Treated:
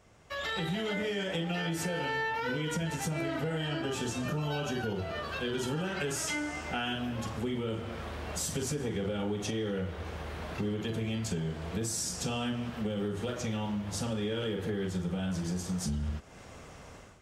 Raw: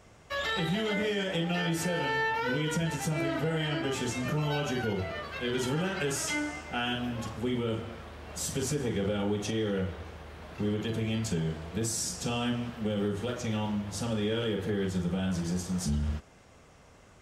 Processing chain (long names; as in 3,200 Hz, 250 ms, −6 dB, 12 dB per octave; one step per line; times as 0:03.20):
automatic gain control gain up to 13 dB
0:03.57–0:05.88: notch filter 2,100 Hz, Q 5.7
downward compressor 2.5 to 1, threshold −30 dBFS, peak gain reduction 11.5 dB
level −5.5 dB